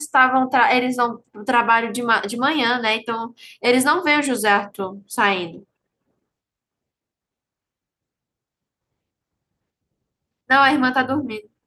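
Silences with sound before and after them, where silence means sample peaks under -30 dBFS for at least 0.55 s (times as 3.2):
5.56–10.5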